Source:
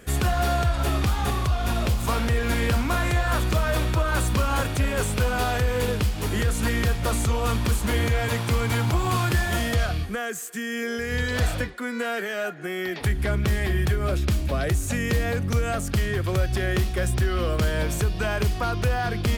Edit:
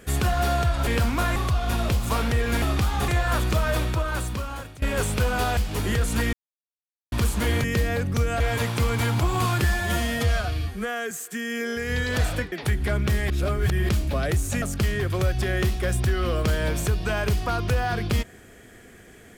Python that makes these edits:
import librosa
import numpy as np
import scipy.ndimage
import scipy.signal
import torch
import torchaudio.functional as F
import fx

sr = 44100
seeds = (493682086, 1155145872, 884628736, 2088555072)

y = fx.edit(x, sr, fx.swap(start_s=0.87, length_s=0.46, other_s=2.59, other_length_s=0.49),
    fx.fade_out_to(start_s=3.7, length_s=1.12, floor_db=-21.0),
    fx.cut(start_s=5.57, length_s=0.47),
    fx.silence(start_s=6.8, length_s=0.79),
    fx.stretch_span(start_s=9.35, length_s=0.98, factor=1.5),
    fx.cut(start_s=11.74, length_s=1.16),
    fx.reverse_span(start_s=13.68, length_s=0.59),
    fx.move(start_s=15.0, length_s=0.76, to_s=8.11), tone=tone)